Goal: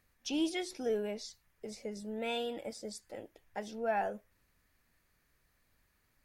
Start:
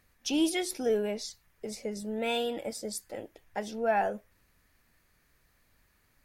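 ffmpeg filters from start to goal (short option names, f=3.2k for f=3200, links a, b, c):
-filter_complex "[0:a]acrossover=split=8200[a][b];[b]acompressor=threshold=-59dB:ratio=4:attack=1:release=60[c];[a][c]amix=inputs=2:normalize=0,volume=-5.5dB"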